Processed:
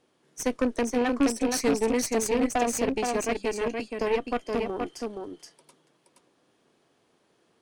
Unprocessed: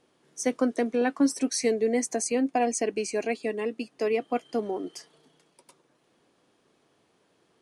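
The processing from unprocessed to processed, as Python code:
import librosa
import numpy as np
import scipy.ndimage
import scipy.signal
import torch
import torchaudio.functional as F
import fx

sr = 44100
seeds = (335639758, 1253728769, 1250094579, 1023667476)

y = fx.rattle_buzz(x, sr, strikes_db=-33.0, level_db=-26.0)
y = y + 10.0 ** (-4.0 / 20.0) * np.pad(y, (int(473 * sr / 1000.0), 0))[:len(y)]
y = fx.cheby_harmonics(y, sr, harmonics=(6,), levels_db=(-17,), full_scale_db=-11.0)
y = F.gain(torch.from_numpy(y), -1.5).numpy()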